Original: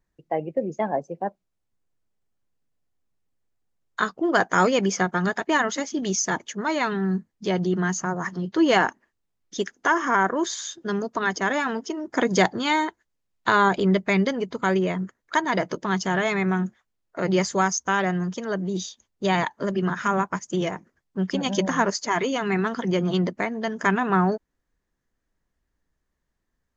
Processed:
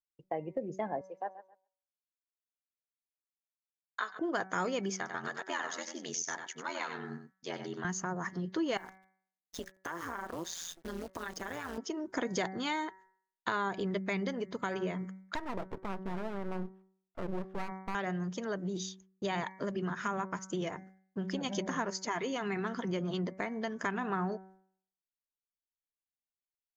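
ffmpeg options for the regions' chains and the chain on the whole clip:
ffmpeg -i in.wav -filter_complex "[0:a]asettb=1/sr,asplit=3[link_01][link_02][link_03];[link_01]atrim=end=1.014[link_04];[link_02]atrim=start=1.01:end=4.19,asetpts=PTS-STARTPTS,afade=type=in:duration=0.004:curve=qsin,afade=type=out:start_time=3.176:duration=0.004:curve=qsin,highpass=610,lowpass=5600,aecho=1:1:134|268|402:0.15|0.0584|0.0228,atrim=end_sample=140238[link_05];[link_03]atrim=start=4.186[link_06];[link_04][link_05]acrossfade=duration=0.004:curve1=hsin:curve2=qsin[link_07];[link_07][link_06]acrossfade=duration=0.004:curve1=qsin:curve2=hsin,asettb=1/sr,asplit=3[link_08][link_09][link_10];[link_08]atrim=end=4.964[link_11];[link_09]atrim=start=4.96:end=7.85,asetpts=PTS-STARTPTS,afade=type=in:duration=0.004:curve=qsin,afade=type=out:start_time=2.886:duration=0.004:curve=qsin,aeval=exprs='val(0)*sin(2*PI*42*n/s)':channel_layout=same,highpass=frequency=870:poles=1,aecho=1:1:95:0.376,atrim=end_sample=127449[link_12];[link_10]atrim=start=7.846[link_13];[link_11][link_12]acrossfade=duration=0.004:curve1=hsin:curve2=qsin[link_14];[link_14][link_13]acrossfade=duration=0.004:curve1=qsin:curve2=hsin,asettb=1/sr,asplit=3[link_15][link_16][link_17];[link_15]atrim=end=8.774[link_18];[link_16]atrim=start=8.77:end=11.78,asetpts=PTS-STARTPTS,afade=type=in:duration=0.004:curve=qsin,afade=type=out:start_time=3.006:duration=0.004:curve=qsin,acrusher=bits=7:dc=4:mix=0:aa=0.000001,acompressor=threshold=-28dB:ratio=4:attack=3.2:release=140:knee=1:detection=peak,tremolo=f=170:d=0.857[link_19];[link_17]atrim=start=11.776[link_20];[link_18][link_19]acrossfade=duration=0.004:curve1=hsin:curve2=qsin[link_21];[link_21][link_20]acrossfade=duration=0.004:curve1=qsin:curve2=hsin,asettb=1/sr,asplit=3[link_22][link_23][link_24];[link_22]atrim=end=15.354[link_25];[link_23]atrim=start=15.35:end=17.95,asetpts=PTS-STARTPTS,afade=type=in:duration=0.004:curve=qsin,afade=type=out:start_time=2.596:duration=0.004:curve=qsin,lowpass=frequency=1300:width=0.5412,lowpass=frequency=1300:width=1.3066,aeval=exprs='max(val(0),0)':channel_layout=same[link_26];[link_24]atrim=start=17.946[link_27];[link_25][link_26]acrossfade=duration=0.004:curve1=hsin:curve2=qsin[link_28];[link_28][link_27]acrossfade=duration=0.004:curve1=qsin:curve2=hsin,agate=range=-33dB:threshold=-47dB:ratio=3:detection=peak,bandreject=frequency=189.4:width_type=h:width=4,bandreject=frequency=378.8:width_type=h:width=4,bandreject=frequency=568.2:width_type=h:width=4,bandreject=frequency=757.6:width_type=h:width=4,bandreject=frequency=947:width_type=h:width=4,bandreject=frequency=1136.4:width_type=h:width=4,bandreject=frequency=1325.8:width_type=h:width=4,bandreject=frequency=1515.2:width_type=h:width=4,bandreject=frequency=1704.6:width_type=h:width=4,bandreject=frequency=1894:width_type=h:width=4,bandreject=frequency=2083.4:width_type=h:width=4,bandreject=frequency=2272.8:width_type=h:width=4,acompressor=threshold=-29dB:ratio=2.5,volume=-5dB" out.wav

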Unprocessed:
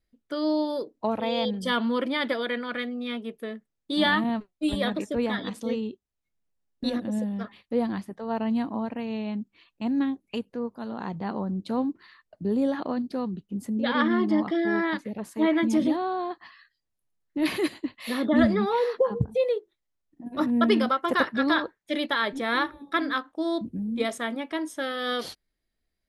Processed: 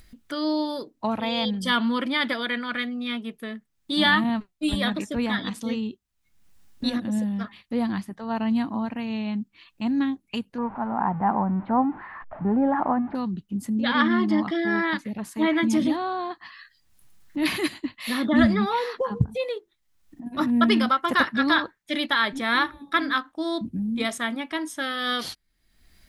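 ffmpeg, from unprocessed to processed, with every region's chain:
ffmpeg -i in.wav -filter_complex "[0:a]asettb=1/sr,asplit=3[link_01][link_02][link_03];[link_01]atrim=end=10.584[link_04];[link_02]atrim=start=10.58:end=13.15,asetpts=PTS-STARTPTS,afade=type=in:duration=0.004:curve=qsin,afade=type=out:start_time=2.566:duration=0.004:curve=qsin,aeval=exprs='val(0)+0.5*0.00891*sgn(val(0))':channel_layout=same,lowpass=frequency=1800:width=0.5412,lowpass=frequency=1800:width=1.3066,equalizer=frequency=820:width_type=o:width=0.84:gain=12.5[link_05];[link_03]atrim=start=13.146[link_06];[link_04][link_05]acrossfade=duration=0.004:curve1=hsin:curve2=qsin[link_07];[link_07][link_06]acrossfade=duration=0.004:curve1=qsin:curve2=hsin,equalizer=frequency=480:width=1.2:gain=-10,acompressor=mode=upward:threshold=-41dB:ratio=2.5,volume=5dB" out.wav

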